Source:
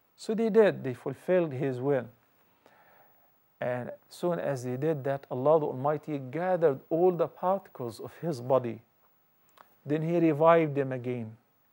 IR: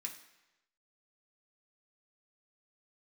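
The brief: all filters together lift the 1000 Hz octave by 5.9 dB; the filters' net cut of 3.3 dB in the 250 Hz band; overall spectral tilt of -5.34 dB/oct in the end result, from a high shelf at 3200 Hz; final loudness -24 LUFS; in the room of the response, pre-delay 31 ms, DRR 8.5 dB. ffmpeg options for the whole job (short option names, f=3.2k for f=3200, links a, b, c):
-filter_complex "[0:a]equalizer=f=250:t=o:g=-6,equalizer=f=1k:t=o:g=7.5,highshelf=f=3.2k:g=6,asplit=2[a][b];[1:a]atrim=start_sample=2205,adelay=31[c];[b][c]afir=irnorm=-1:irlink=0,volume=-6dB[d];[a][d]amix=inputs=2:normalize=0,volume=3dB"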